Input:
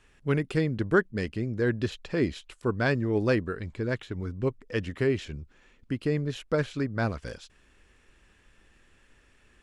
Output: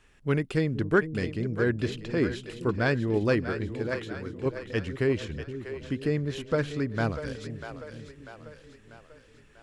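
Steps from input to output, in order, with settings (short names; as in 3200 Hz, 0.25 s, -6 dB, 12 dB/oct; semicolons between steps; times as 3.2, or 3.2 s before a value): 3.75–4.46 tone controls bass -9 dB, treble +2 dB; on a send: split-band echo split 380 Hz, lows 0.469 s, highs 0.643 s, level -10 dB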